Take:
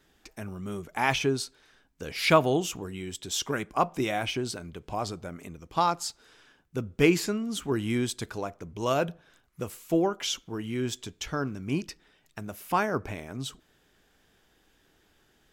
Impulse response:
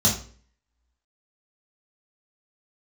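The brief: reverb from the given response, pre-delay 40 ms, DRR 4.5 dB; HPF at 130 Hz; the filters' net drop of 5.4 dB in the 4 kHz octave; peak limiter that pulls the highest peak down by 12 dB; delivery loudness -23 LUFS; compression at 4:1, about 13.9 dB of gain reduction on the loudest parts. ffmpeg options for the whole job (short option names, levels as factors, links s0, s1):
-filter_complex "[0:a]highpass=130,equalizer=f=4000:t=o:g=-7.5,acompressor=threshold=0.0224:ratio=4,alimiter=level_in=1.78:limit=0.0631:level=0:latency=1,volume=0.562,asplit=2[s0][s1];[1:a]atrim=start_sample=2205,adelay=40[s2];[s1][s2]afir=irnorm=-1:irlink=0,volume=0.126[s3];[s0][s3]amix=inputs=2:normalize=0,volume=4.22"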